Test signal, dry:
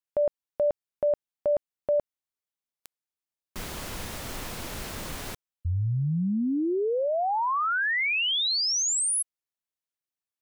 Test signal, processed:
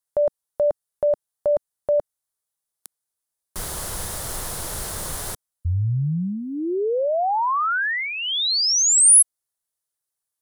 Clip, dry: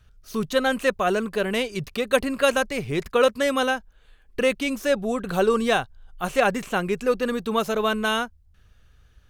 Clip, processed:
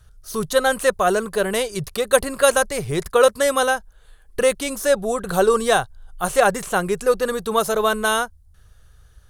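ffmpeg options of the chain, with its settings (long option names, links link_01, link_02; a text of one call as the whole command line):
ffmpeg -i in.wav -af "equalizer=frequency=250:width_type=o:width=0.67:gain=-10,equalizer=frequency=2500:width_type=o:width=0.67:gain=-9,equalizer=frequency=10000:width_type=o:width=0.67:gain=10,volume=5.5dB" out.wav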